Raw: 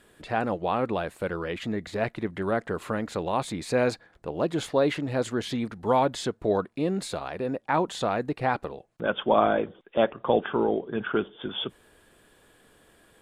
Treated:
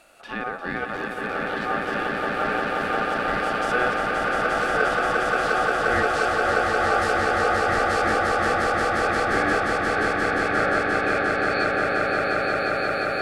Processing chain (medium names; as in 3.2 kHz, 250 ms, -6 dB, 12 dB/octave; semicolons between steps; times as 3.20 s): bass shelf 99 Hz -8.5 dB; ring modulator 990 Hz; in parallel at +0.5 dB: compression, threshold -38 dBFS, peak gain reduction 18.5 dB; on the sum: peak limiter -15 dBFS, peak gain reduction 9 dB; harmonic-percussive split percussive -13 dB; 0.88–1.43 s: overload inside the chain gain 26 dB; echo with a slow build-up 176 ms, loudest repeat 8, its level -3.5 dB; trim +4 dB